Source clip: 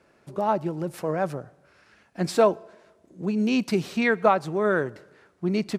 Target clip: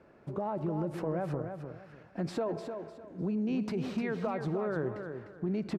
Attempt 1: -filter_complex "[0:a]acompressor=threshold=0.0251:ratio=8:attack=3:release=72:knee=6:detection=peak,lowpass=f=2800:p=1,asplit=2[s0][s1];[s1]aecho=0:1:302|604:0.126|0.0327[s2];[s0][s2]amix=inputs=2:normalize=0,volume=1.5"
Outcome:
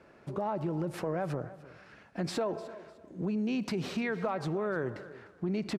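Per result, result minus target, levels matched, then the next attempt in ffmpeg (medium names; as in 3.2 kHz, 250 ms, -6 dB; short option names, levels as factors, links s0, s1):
echo-to-direct -10.5 dB; 2 kHz band +3.5 dB
-filter_complex "[0:a]acompressor=threshold=0.0251:ratio=8:attack=3:release=72:knee=6:detection=peak,lowpass=f=2800:p=1,asplit=2[s0][s1];[s1]aecho=0:1:302|604|906:0.422|0.11|0.0285[s2];[s0][s2]amix=inputs=2:normalize=0,volume=1.5"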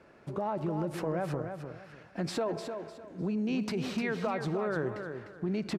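2 kHz band +4.0 dB
-filter_complex "[0:a]acompressor=threshold=0.0251:ratio=8:attack=3:release=72:knee=6:detection=peak,lowpass=f=960:p=1,asplit=2[s0][s1];[s1]aecho=0:1:302|604|906:0.422|0.11|0.0285[s2];[s0][s2]amix=inputs=2:normalize=0,volume=1.5"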